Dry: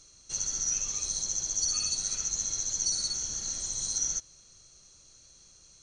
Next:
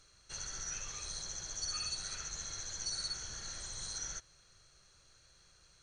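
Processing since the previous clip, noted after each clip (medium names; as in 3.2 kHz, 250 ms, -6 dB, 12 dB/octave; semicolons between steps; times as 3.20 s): fifteen-band graphic EQ 250 Hz -9 dB, 1.6 kHz +8 dB, 6.3 kHz -11 dB; trim -2.5 dB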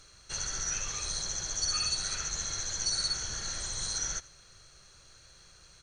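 delay 85 ms -21 dB; trim +8 dB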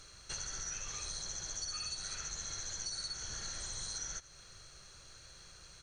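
compression 4:1, threshold -41 dBFS, peak gain reduction 12 dB; trim +1 dB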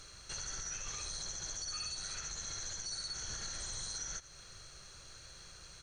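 peak limiter -34 dBFS, peak gain reduction 6 dB; trim +2 dB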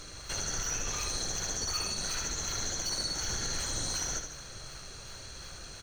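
in parallel at -9 dB: decimation with a swept rate 22×, swing 160% 2.7 Hz; on the sum: feedback delay 75 ms, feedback 52%, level -7 dB; trim +6 dB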